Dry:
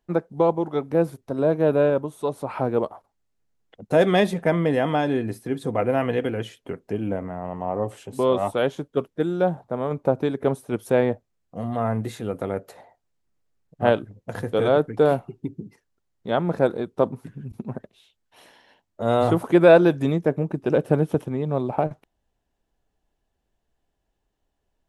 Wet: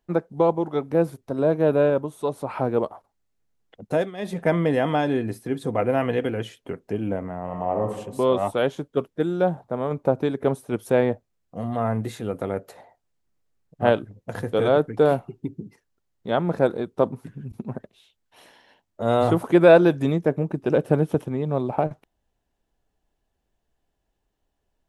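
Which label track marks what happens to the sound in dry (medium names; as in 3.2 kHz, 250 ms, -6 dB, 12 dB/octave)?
3.860000	4.420000	dip -19.5 dB, fades 0.25 s
7.430000	7.840000	reverb throw, RT60 0.86 s, DRR 2.5 dB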